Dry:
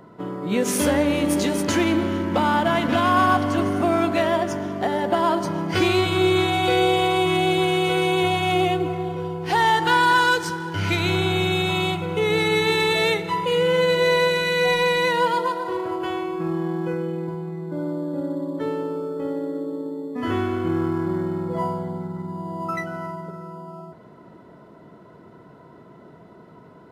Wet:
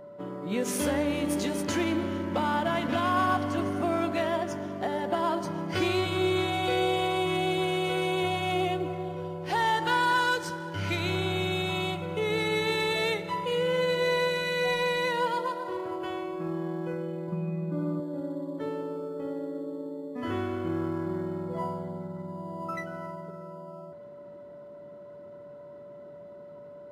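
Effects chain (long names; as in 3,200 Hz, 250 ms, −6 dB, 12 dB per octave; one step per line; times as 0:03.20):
0:17.32–0:18.00: hollow resonant body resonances 200/1,200/2,500 Hz, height 18 dB, ringing for 90 ms
steady tone 580 Hz −36 dBFS
level −7.5 dB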